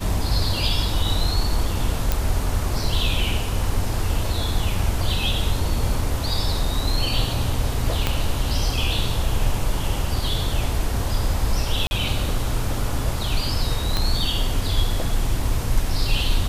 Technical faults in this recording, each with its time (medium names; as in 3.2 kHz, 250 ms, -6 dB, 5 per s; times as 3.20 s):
2.12 s: pop
8.07 s: pop -6 dBFS
11.87–11.91 s: dropout 40 ms
13.97 s: pop -7 dBFS